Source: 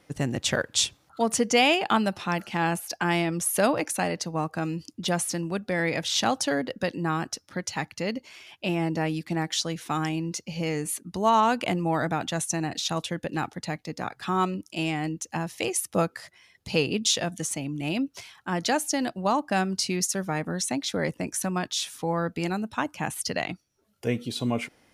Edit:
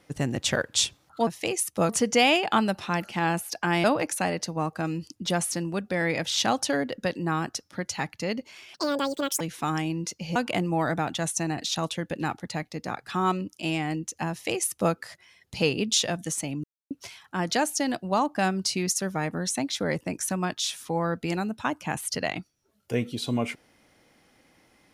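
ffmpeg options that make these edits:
-filter_complex "[0:a]asplit=9[a][b][c][d][e][f][g][h][i];[a]atrim=end=1.272[j];[b]atrim=start=15.438:end=16.062[k];[c]atrim=start=1.268:end=3.222[l];[d]atrim=start=3.618:end=8.524[m];[e]atrim=start=8.52:end=9.68,asetpts=PTS-STARTPTS,asetrate=76734,aresample=44100[n];[f]atrim=start=9.676:end=10.632[o];[g]atrim=start=11.488:end=17.77,asetpts=PTS-STARTPTS,afade=t=out:st=6.278:d=0.004:c=hsin[p];[h]atrim=start=17.77:end=18.04,asetpts=PTS-STARTPTS,volume=0[q];[i]atrim=start=18.04,asetpts=PTS-STARTPTS,afade=t=in:d=0.004:c=hsin[r];[j][k]acrossfade=d=0.004:c1=hsin:c2=hsin[s];[s][l]acrossfade=d=0.004:c1=hsin:c2=hsin[t];[t][m]acrossfade=d=0.004:c1=hsin:c2=hsin[u];[u][n]acrossfade=d=0.004:c1=hsin:c2=hsin[v];[v][o]acrossfade=d=0.004:c1=hsin:c2=hsin[w];[p][q][r]concat=n=3:v=0:a=1[x];[w][x]acrossfade=d=0.004:c1=hsin:c2=hsin"

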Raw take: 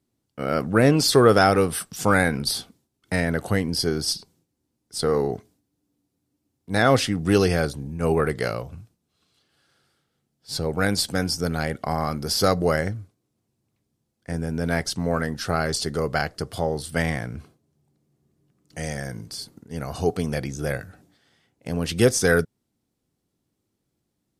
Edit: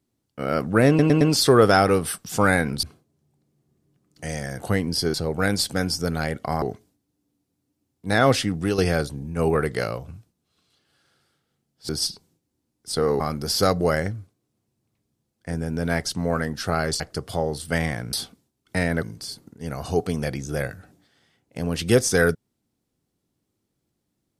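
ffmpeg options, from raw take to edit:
-filter_complex "[0:a]asplit=14[a][b][c][d][e][f][g][h][i][j][k][l][m][n];[a]atrim=end=0.992[o];[b]atrim=start=0.878:end=0.992[p];[c]atrim=start=0.878:end=0.992[q];[d]atrim=start=0.878:end=2.502[r];[e]atrim=start=17.368:end=19.132[s];[f]atrim=start=3.398:end=3.952[t];[g]atrim=start=10.528:end=12.012[u];[h]atrim=start=5.258:end=7.42,asetpts=PTS-STARTPTS,afade=t=out:st=1.912:d=0.25:silence=0.334965[v];[i]atrim=start=7.42:end=10.532,asetpts=PTS-STARTPTS,afade=t=in:d=0.004:c=hsin:silence=0.334965[w];[j]atrim=start=3.948:end=5.262[x];[k]atrim=start=12.008:end=15.812[y];[l]atrim=start=16.238:end=17.372[z];[m]atrim=start=2.498:end=3.402[aa];[n]atrim=start=19.128[ab];[o][p]acrossfade=d=0.004:c1=hsin:c2=hsin[ac];[ac][q]acrossfade=d=0.004:c1=hsin:c2=hsin[ad];[ad][r]acrossfade=d=0.004:c1=hsin:c2=hsin[ae];[ae][s]acrossfade=d=0.004:c1=hsin:c2=hsin[af];[af][t]acrossfade=d=0.004:c1=hsin:c2=hsin[ag];[ag][u]acrossfade=d=0.004:c1=hsin:c2=hsin[ah];[v][w]concat=n=2:v=0:a=1[ai];[ah][ai]acrossfade=d=0.004:c1=hsin:c2=hsin[aj];[aj][x]acrossfade=d=0.004:c1=hsin:c2=hsin[ak];[ak][y]acrossfade=d=0.004:c1=hsin:c2=hsin[al];[al][z]acrossfade=d=0.004:c1=hsin:c2=hsin[am];[am][aa]acrossfade=d=0.004:c1=hsin:c2=hsin[an];[an][ab]acrossfade=d=0.004:c1=hsin:c2=hsin"

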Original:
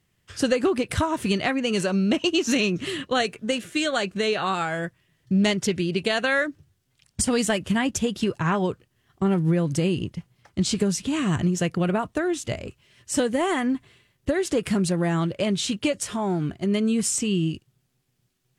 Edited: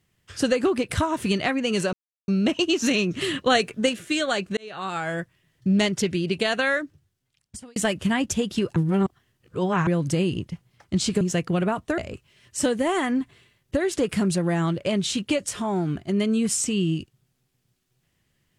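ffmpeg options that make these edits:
-filter_complex "[0:a]asplit=10[a][b][c][d][e][f][g][h][i][j];[a]atrim=end=1.93,asetpts=PTS-STARTPTS,afade=t=out:st=1.926:d=0.004:c=hsin,apad=pad_dur=0.35[k];[b]atrim=start=1.93:end=2.862,asetpts=PTS-STARTPTS,afade=t=in:d=0.004:c=hsin[l];[c]atrim=start=2.858:end=3.542,asetpts=PTS-STARTPTS,volume=3.5dB[m];[d]atrim=start=3.538:end=4.22,asetpts=PTS-STARTPTS,afade=t=out:st=0.678:d=0.004:c=hsin[n];[e]atrim=start=4.22:end=7.41,asetpts=PTS-STARTPTS,afade=t=in:d=0.54,afade=t=out:st=2.04:d=1.15[o];[f]atrim=start=7.41:end=8.412,asetpts=PTS-STARTPTS,afade=t=in:d=0.004:c=hsin[p];[g]atrim=start=8.408:end=9.522,asetpts=PTS-STARTPTS,areverse[q];[h]atrim=start=9.518:end=10.862[r];[i]atrim=start=11.478:end=12.252[s];[j]atrim=start=12.518[t];[k][l]concat=n=2:v=0:a=1[u];[u][m]acrossfade=d=0.004:c1=hsin:c2=hsin[v];[n][o][p]concat=n=3:v=0:a=1[w];[v][w]acrossfade=d=0.004:c1=hsin:c2=hsin[x];[x][q]acrossfade=d=0.004:c1=hsin:c2=hsin[y];[y][r]acrossfade=d=0.004:c1=hsin:c2=hsin[z];[z][s]acrossfade=d=0.004:c1=hsin:c2=hsin[aa];[aa][t]acrossfade=d=0.004:c1=hsin:c2=hsin"

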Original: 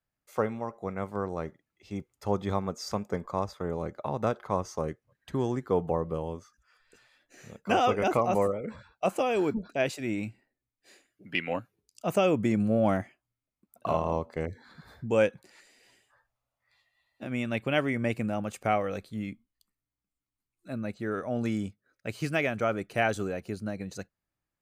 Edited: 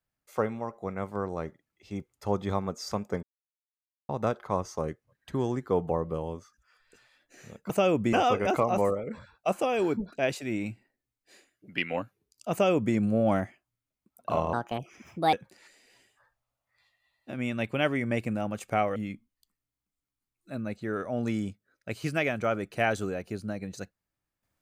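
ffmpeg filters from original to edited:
-filter_complex "[0:a]asplit=8[a][b][c][d][e][f][g][h];[a]atrim=end=3.23,asetpts=PTS-STARTPTS,afade=t=out:st=3.226:d=0.004:c=hsin[i];[b]atrim=start=3.23:end=4.09,asetpts=PTS-STARTPTS,volume=0[j];[c]atrim=start=4.09:end=7.702,asetpts=PTS-STARTPTS,afade=t=in:d=0.004:c=hsin[k];[d]atrim=start=12.088:end=12.522[l];[e]atrim=start=7.698:end=14.104[m];[f]atrim=start=14.1:end=15.26,asetpts=PTS-STARTPTS,asetrate=63945,aresample=44100[n];[g]atrim=start=15.256:end=18.892[o];[h]atrim=start=19.138[p];[i][j][k]concat=n=3:v=0:a=1[q];[q][l]acrossfade=d=0.004:c1=hsin:c2=hsin[r];[r][m]acrossfade=d=0.004:c1=hsin:c2=hsin[s];[s][n]acrossfade=d=0.004:c1=hsin:c2=hsin[t];[t][o]acrossfade=d=0.004:c1=hsin:c2=hsin[u];[u][p]acrossfade=d=0.004:c1=hsin:c2=hsin"

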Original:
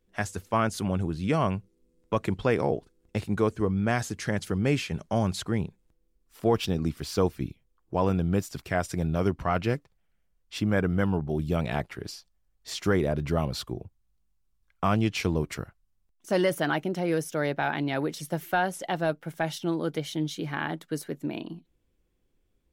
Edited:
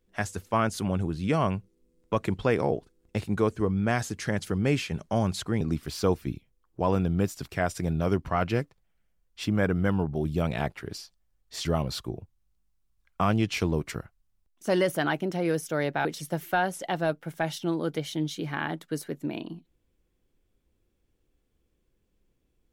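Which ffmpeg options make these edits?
-filter_complex "[0:a]asplit=4[a][b][c][d];[a]atrim=end=5.612[e];[b]atrim=start=6.748:end=12.792[f];[c]atrim=start=13.278:end=17.682[g];[d]atrim=start=18.048[h];[e][f]acrossfade=d=0.004:c1=hsin:c2=hsin[i];[i][g]acrossfade=d=0.004:c1=hsin:c2=hsin[j];[j][h]acrossfade=d=0.004:c1=hsin:c2=hsin"

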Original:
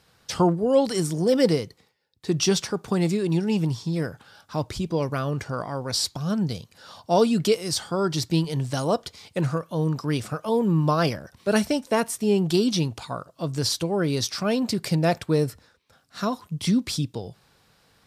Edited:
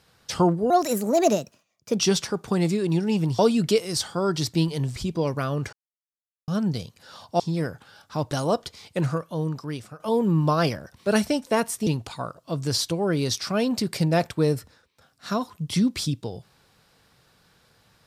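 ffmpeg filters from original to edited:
-filter_complex "[0:a]asplit=11[a][b][c][d][e][f][g][h][i][j][k];[a]atrim=end=0.704[l];[b]atrim=start=0.7:end=2.4,asetpts=PTS-STARTPTS,asetrate=57771,aresample=44100,atrim=end_sample=57229,asetpts=PTS-STARTPTS[m];[c]atrim=start=2.396:end=3.792[n];[d]atrim=start=7.148:end=8.722[o];[e]atrim=start=4.708:end=5.48,asetpts=PTS-STARTPTS,afade=t=out:st=0.768:d=0.004:c=hsin[p];[f]atrim=start=5.48:end=6.23,asetpts=PTS-STARTPTS,volume=0[q];[g]atrim=start=6.23:end=7.152,asetpts=PTS-STARTPTS,afade=t=in:d=0.004:c=hsin[r];[h]atrim=start=3.788:end=4.712[s];[i]atrim=start=8.718:end=10.4,asetpts=PTS-STARTPTS,afade=t=out:st=0.802:d=0.88:silence=0.199526[t];[j]atrim=start=10.4:end=12.272,asetpts=PTS-STARTPTS,afade=t=in:d=0.004:c=hsin:silence=0.199526[u];[k]atrim=start=12.778[v];[l][m]acrossfade=d=0.004:c1=hsin:c2=hsin[w];[w][n]acrossfade=d=0.004:c1=hsin:c2=hsin[x];[x][o]acrossfade=d=0.004:c1=hsin:c2=hsin[y];[p][q][r]concat=n=3:v=0:a=1[z];[y][z]acrossfade=d=0.004:c1=hsin:c2=hsin[aa];[aa][s]acrossfade=d=0.004:c1=hsin:c2=hsin[ab];[t][u]concat=n=2:v=0:a=1[ac];[ab][ac]acrossfade=d=0.004:c1=hsin:c2=hsin[ad];[ad][v]acrossfade=d=0.004:c1=hsin:c2=hsin"

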